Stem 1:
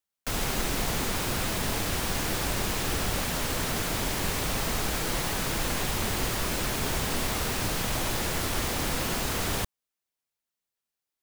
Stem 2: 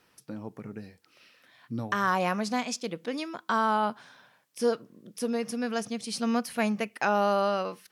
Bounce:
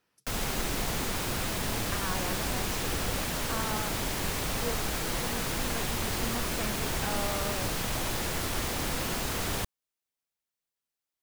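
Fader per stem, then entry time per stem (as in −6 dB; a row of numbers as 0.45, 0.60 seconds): −2.5, −11.5 decibels; 0.00, 0.00 seconds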